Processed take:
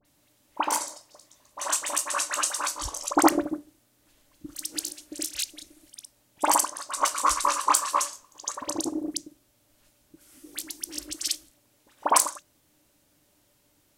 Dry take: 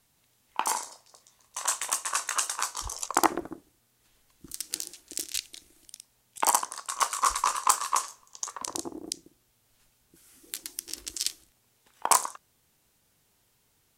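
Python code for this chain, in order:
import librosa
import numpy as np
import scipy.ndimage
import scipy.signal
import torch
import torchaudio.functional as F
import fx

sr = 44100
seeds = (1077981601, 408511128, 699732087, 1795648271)

y = fx.small_body(x, sr, hz=(300.0, 580.0), ring_ms=95, db=14)
y = fx.dispersion(y, sr, late='highs', ms=51.0, hz=1800.0)
y = y * 10.0 ** (2.0 / 20.0)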